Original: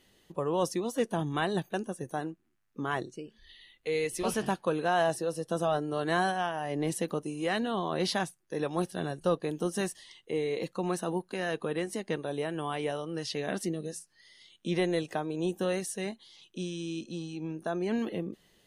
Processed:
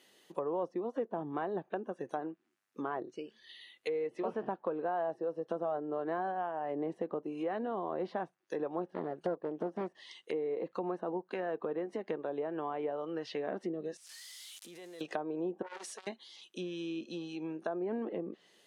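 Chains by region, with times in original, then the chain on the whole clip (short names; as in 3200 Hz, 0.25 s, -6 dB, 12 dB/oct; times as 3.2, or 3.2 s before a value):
8.9–10.31 de-esser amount 85% + Doppler distortion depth 0.43 ms
13.97–15.01 switching spikes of -28.5 dBFS + level quantiser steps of 24 dB
15.62–16.07 steep high-pass 230 Hz 48 dB/oct + hard clip -37.5 dBFS + core saturation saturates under 770 Hz
whole clip: treble ducked by the level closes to 970 Hz, closed at -29 dBFS; HPF 320 Hz 12 dB/oct; compressor 3:1, threshold -34 dBFS; gain +1.5 dB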